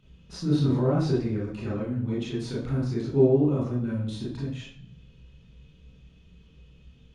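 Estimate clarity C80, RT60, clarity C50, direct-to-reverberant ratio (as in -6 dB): 7.5 dB, 0.60 s, 1.5 dB, -7.5 dB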